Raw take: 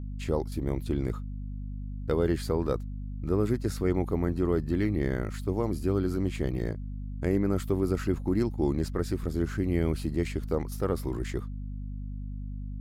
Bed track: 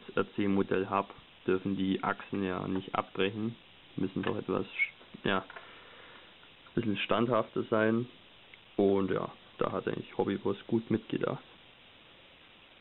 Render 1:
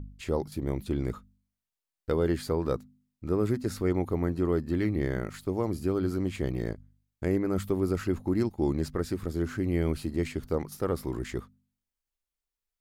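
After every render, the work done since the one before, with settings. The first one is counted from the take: de-hum 50 Hz, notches 5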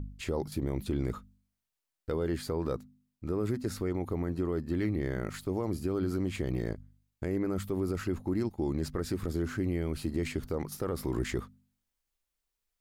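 gain riding 0.5 s; peak limiter -21 dBFS, peak gain reduction 8 dB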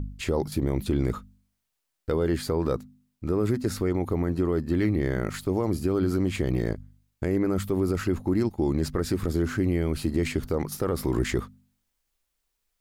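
trim +6.5 dB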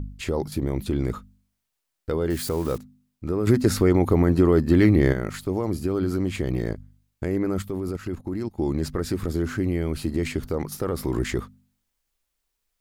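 2.30–2.78 s: zero-crossing glitches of -28.5 dBFS; 3.47–5.13 s: gain +7.5 dB; 7.62–8.55 s: level held to a coarse grid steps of 14 dB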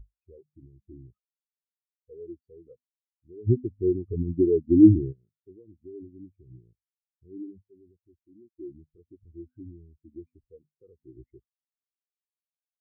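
in parallel at 0 dB: compression, threshold -27 dBFS, peak gain reduction 14 dB; on the sum: spectral contrast expander 4:1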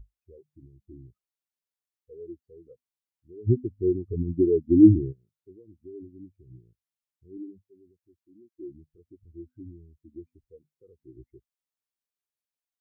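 7.37–8.63 s: high-pass 140 Hz 6 dB/octave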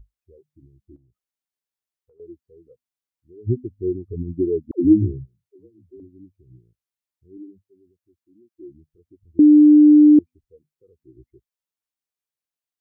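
0.96–2.20 s: compression 12:1, threshold -56 dBFS; 4.71–6.00 s: phase dispersion lows, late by 142 ms, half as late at 330 Hz; 9.39–10.19 s: bleep 299 Hz -6.5 dBFS

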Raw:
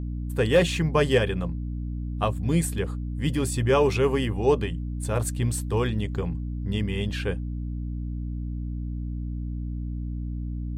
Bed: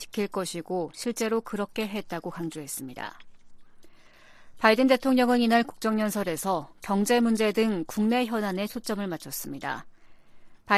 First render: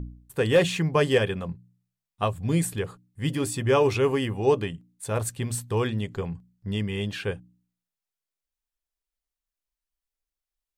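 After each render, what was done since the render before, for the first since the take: de-hum 60 Hz, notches 5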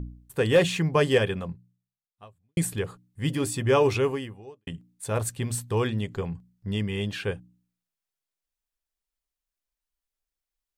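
1.38–2.57 s: fade out quadratic; 3.97–4.67 s: fade out quadratic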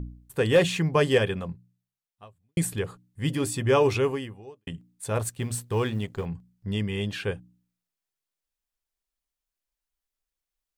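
5.21–6.26 s: companding laws mixed up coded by A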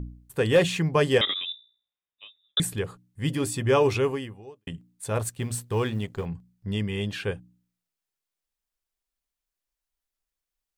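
1.21–2.60 s: frequency inversion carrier 3.7 kHz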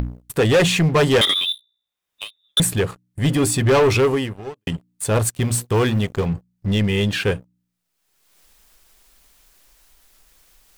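waveshaping leveller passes 3; upward compressor, threshold -25 dBFS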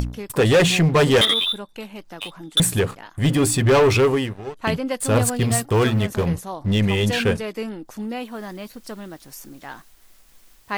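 add bed -5 dB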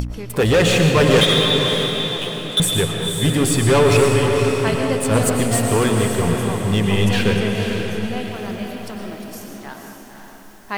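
echo that smears into a reverb 519 ms, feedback 43%, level -5.5 dB; algorithmic reverb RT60 1.4 s, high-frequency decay 0.8×, pre-delay 75 ms, DRR 3.5 dB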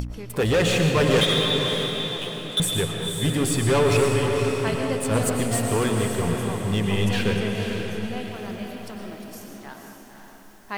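trim -5.5 dB

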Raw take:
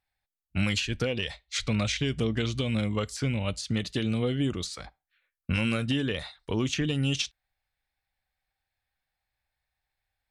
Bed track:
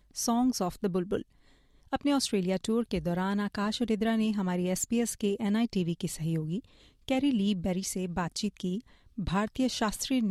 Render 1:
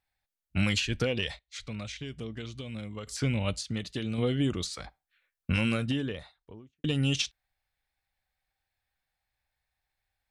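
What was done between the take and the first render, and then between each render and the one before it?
1.39–3.07 s: gain -11 dB; 3.63–4.18 s: gain -5 dB; 5.54–6.84 s: studio fade out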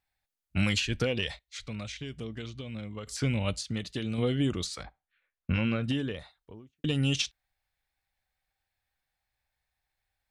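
2.50–3.06 s: distance through air 75 m; 4.83–5.84 s: distance through air 250 m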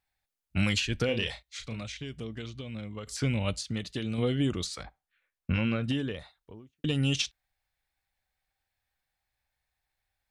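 1.05–1.82 s: doubling 35 ms -7 dB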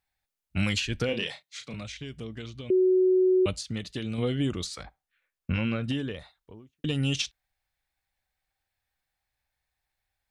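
1.13–1.74 s: high-pass 140 Hz 24 dB/octave; 2.70–3.46 s: bleep 371 Hz -18 dBFS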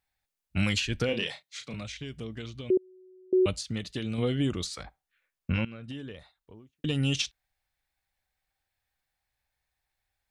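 2.77–3.33 s: inverted gate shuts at -25 dBFS, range -33 dB; 5.65–6.97 s: fade in, from -17 dB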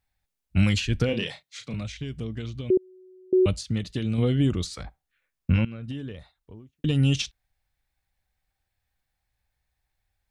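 bass shelf 260 Hz +9.5 dB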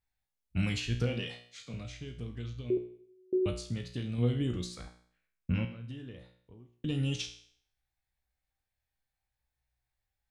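feedback comb 60 Hz, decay 0.56 s, harmonics all, mix 80%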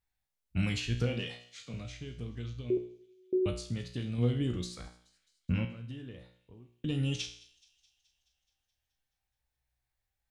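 feedback echo behind a high-pass 213 ms, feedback 63%, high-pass 3.7 kHz, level -20 dB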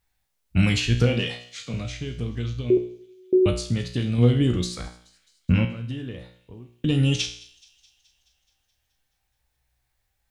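trim +11 dB

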